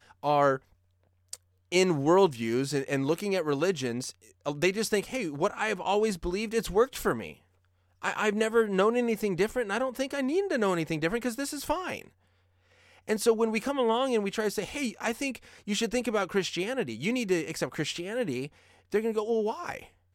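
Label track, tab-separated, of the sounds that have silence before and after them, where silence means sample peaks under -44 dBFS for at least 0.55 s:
1.330000	7.340000	sound
8.020000	12.070000	sound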